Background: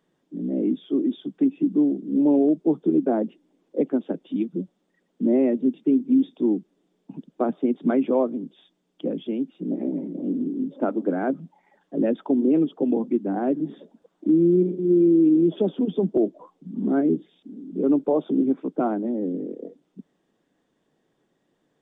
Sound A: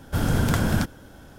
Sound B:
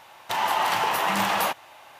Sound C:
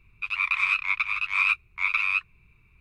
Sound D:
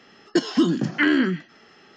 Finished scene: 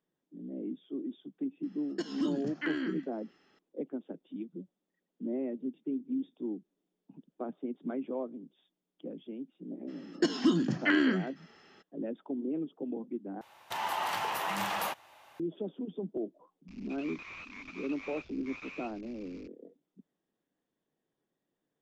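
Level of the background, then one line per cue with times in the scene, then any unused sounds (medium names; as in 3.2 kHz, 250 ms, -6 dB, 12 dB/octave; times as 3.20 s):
background -15 dB
1.63 s: add D -15.5 dB
9.87 s: add D -7 dB, fades 0.02 s
13.41 s: replace with B -9.5 dB
16.68 s: add C -16 dB + one-bit delta coder 32 kbps, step -35.5 dBFS
not used: A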